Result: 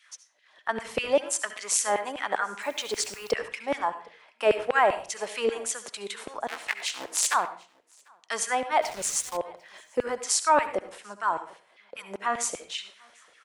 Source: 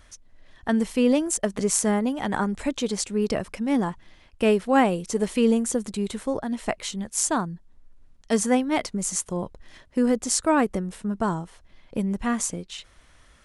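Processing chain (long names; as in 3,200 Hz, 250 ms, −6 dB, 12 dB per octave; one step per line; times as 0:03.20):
0:06.48–0:07.34: sub-harmonics by changed cycles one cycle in 3, inverted
auto-filter high-pass saw down 5.1 Hz 470–2,700 Hz
on a send at −11 dB: convolution reverb RT60 0.40 s, pre-delay 63 ms
0:08.82–0:09.37: on the sum: bit-depth reduction 6 bits, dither none
high-shelf EQ 10,000 Hz −10 dB
downward compressor 1.5 to 1, threshold −46 dBFS, peak gain reduction 11.5 dB
single-tap delay 746 ms −23 dB
0:02.61–0:03.31: background noise white −60 dBFS
multiband upward and downward expander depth 40%
level +7 dB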